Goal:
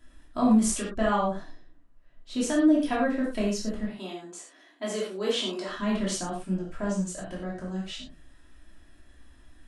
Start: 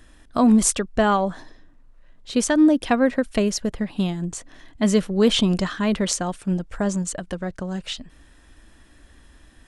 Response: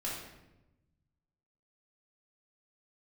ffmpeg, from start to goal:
-filter_complex "[0:a]asettb=1/sr,asplit=3[a][b][c];[a]atrim=end=3.874[d];[b]atrim=start=3.87:end=5.69,asetpts=PTS-STARTPTS,afade=t=in:d=0.004:c=qsin,afade=t=out:st=1.816:d=0.004:c=qsin,highpass=f=300:w=0.5412,highpass=f=300:w=1.3066[e];[c]atrim=start=5.686[f];[d][e]acrossfade=d=0.004:c1=hsin:c2=qsin[g];[g][f]acrossfade=d=0.004:c1=qsin:c2=hsin[h];[1:a]atrim=start_sample=2205,afade=t=out:st=0.17:d=0.01,atrim=end_sample=7938[i];[h][i]afir=irnorm=-1:irlink=0,volume=-8.5dB"

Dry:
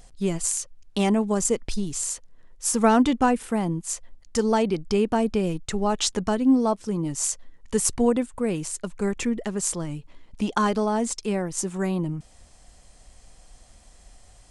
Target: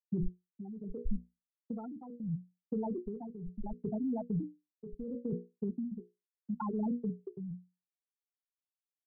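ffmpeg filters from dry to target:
-filter_complex "[0:a]afftfilt=real='re*gte(hypot(re,im),0.501)':imag='im*gte(hypot(re,im),0.501)':win_size=1024:overlap=0.75,bandreject=f=60:t=h:w=6,bandreject=f=120:t=h:w=6,bandreject=f=180:t=h:w=6,bandreject=f=240:t=h:w=6,bandreject=f=300:t=h:w=6,bandreject=f=360:t=h:w=6,bandreject=f=420:t=h:w=6,bandreject=f=480:t=h:w=6,bandreject=f=540:t=h:w=6,adynamicequalizer=threshold=0.00158:dfrequency=1800:dqfactor=3.6:tfrequency=1800:tqfactor=3.6:attack=5:release=100:ratio=0.375:range=2:mode=cutabove:tftype=bell,areverse,acompressor=threshold=-31dB:ratio=16,areverse,alimiter=level_in=11dB:limit=-24dB:level=0:latency=1:release=15,volume=-11dB,acrossover=split=160[a][b];[b]acompressor=threshold=-48dB:ratio=10[c];[a][c]amix=inputs=2:normalize=0,atempo=1.6,tremolo=f=0.73:d=0.76,volume=14dB"

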